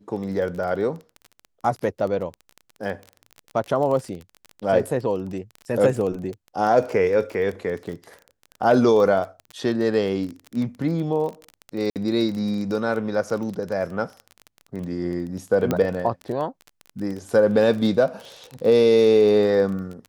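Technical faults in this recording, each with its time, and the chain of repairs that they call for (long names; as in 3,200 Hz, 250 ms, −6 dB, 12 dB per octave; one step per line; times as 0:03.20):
surface crackle 26 per second −28 dBFS
0:11.90–0:11.96: drop-out 58 ms
0:15.71: click −9 dBFS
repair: click removal
repair the gap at 0:11.90, 58 ms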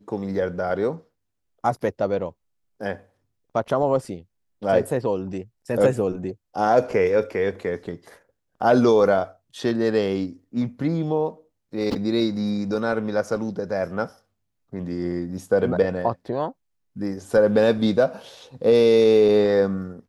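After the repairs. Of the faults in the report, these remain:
none of them is left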